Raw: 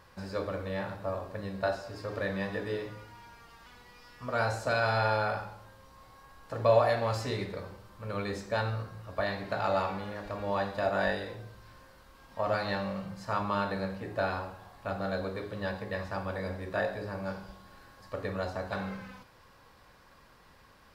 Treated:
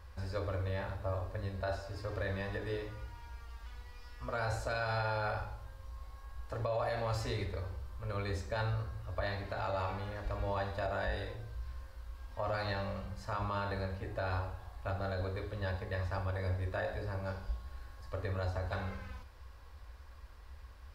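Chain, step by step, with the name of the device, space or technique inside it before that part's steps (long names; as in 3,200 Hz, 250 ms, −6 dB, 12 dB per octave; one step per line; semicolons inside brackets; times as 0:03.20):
car stereo with a boomy subwoofer (low shelf with overshoot 100 Hz +14 dB, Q 3; brickwall limiter −22.5 dBFS, peak gain reduction 10.5 dB)
level −3.5 dB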